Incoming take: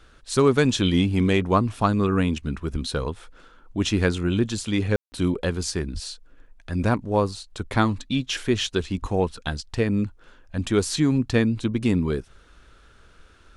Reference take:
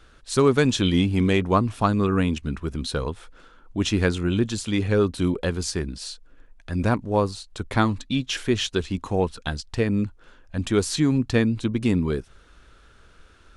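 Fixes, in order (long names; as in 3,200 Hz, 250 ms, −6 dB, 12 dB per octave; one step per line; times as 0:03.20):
0:02.72–0:02.84: high-pass filter 140 Hz 24 dB per octave
0:05.93–0:06.05: high-pass filter 140 Hz 24 dB per octave
0:09.01–0:09.13: high-pass filter 140 Hz 24 dB per octave
ambience match 0:04.96–0:05.12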